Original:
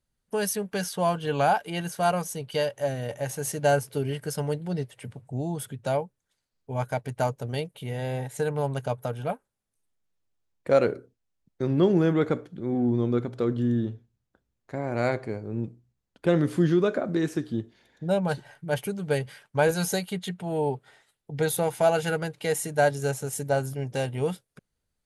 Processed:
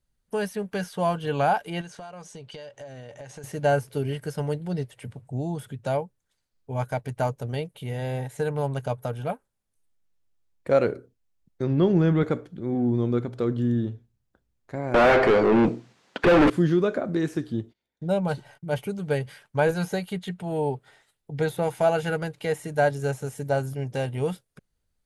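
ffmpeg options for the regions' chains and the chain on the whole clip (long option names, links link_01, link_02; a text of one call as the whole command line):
ffmpeg -i in.wav -filter_complex "[0:a]asettb=1/sr,asplit=3[link_01][link_02][link_03];[link_01]atrim=end=1.814[link_04];[link_02]atrim=start=1.81:end=3.44,asetpts=PTS-STARTPTS,afade=type=in:duration=0.004:curve=qsin,afade=type=out:start_time=1.626:duration=0.004:curve=qsin,lowpass=frequency=7800:width=0.5412,lowpass=frequency=7800:width=1.3066,lowshelf=frequency=200:gain=-5.5,acompressor=threshold=-37dB:ratio=16:attack=3.2:release=140:knee=1:detection=peak[link_05];[link_03]atrim=start=3.436[link_06];[link_04][link_05]acrossfade=duration=0.004:curve1=hsin:curve2=qsin[link_07];[link_07][link_06]acrossfade=duration=0.004:curve1=qsin:curve2=hsin,asettb=1/sr,asplit=3[link_08][link_09][link_10];[link_08]atrim=end=11.644[link_11];[link_09]atrim=start=11.64:end=12.23,asetpts=PTS-STARTPTS,afade=type=in:duration=0.004:curve=qsin,afade=type=out:start_time=0.586:duration=0.004:curve=qsin,lowpass=5900,asubboost=boost=11:cutoff=200[link_12];[link_10]atrim=start=12.226[link_13];[link_11][link_12]acrossfade=duration=0.004:curve1=hsin:curve2=qsin[link_14];[link_14][link_13]acrossfade=duration=0.004:curve1=qsin:curve2=hsin,asettb=1/sr,asplit=3[link_15][link_16][link_17];[link_15]atrim=end=14.944[link_18];[link_16]atrim=start=14.94:end=16.5,asetpts=PTS-STARTPTS,afade=type=in:duration=0.004:curve=qsin,afade=type=out:start_time=1.556:duration=0.004:curve=qsin,highpass=180,lowpass=6900,asplit=2[link_19][link_20];[link_20]highpass=frequency=720:poles=1,volume=39dB,asoftclip=type=tanh:threshold=-10dB[link_21];[link_19][link_21]amix=inputs=2:normalize=0,lowpass=frequency=4200:poles=1,volume=-6dB[link_22];[link_17]atrim=start=16.496[link_23];[link_18][link_22]acrossfade=duration=0.004:curve1=hsin:curve2=qsin[link_24];[link_24][link_23]acrossfade=duration=0.004:curve1=qsin:curve2=hsin,asettb=1/sr,asplit=3[link_25][link_26][link_27];[link_25]atrim=end=17.614[link_28];[link_26]atrim=start=17.61:end=19,asetpts=PTS-STARTPTS,afade=type=in:duration=0.004:curve=qsin,afade=type=out:start_time=1.386:duration=0.004:curve=qsin,bandreject=frequency=1700:width=7,agate=range=-23dB:threshold=-58dB:ratio=16:release=100:detection=peak[link_29];[link_27]atrim=start=18.996[link_30];[link_28][link_29]acrossfade=duration=0.004:curve1=hsin:curve2=qsin[link_31];[link_31][link_30]acrossfade=duration=0.004:curve1=qsin:curve2=hsin,acrossover=split=3100[link_32][link_33];[link_33]acompressor=threshold=-44dB:ratio=4:attack=1:release=60[link_34];[link_32][link_34]amix=inputs=2:normalize=0,lowshelf=frequency=61:gain=8" out.wav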